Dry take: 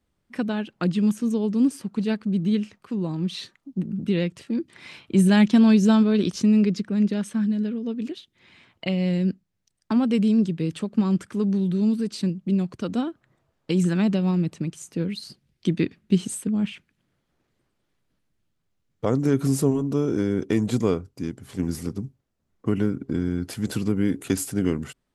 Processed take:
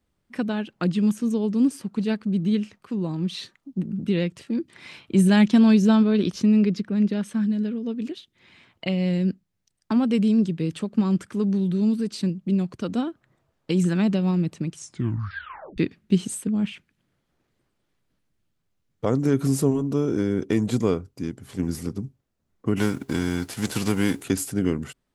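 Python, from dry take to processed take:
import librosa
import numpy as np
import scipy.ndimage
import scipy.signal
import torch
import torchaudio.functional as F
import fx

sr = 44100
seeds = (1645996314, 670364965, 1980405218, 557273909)

y = fx.peak_eq(x, sr, hz=7900.0, db=-6.0, octaves=1.0, at=(5.82, 7.29))
y = fx.envelope_flatten(y, sr, power=0.6, at=(22.76, 24.23), fade=0.02)
y = fx.edit(y, sr, fx.tape_stop(start_s=14.74, length_s=1.04), tone=tone)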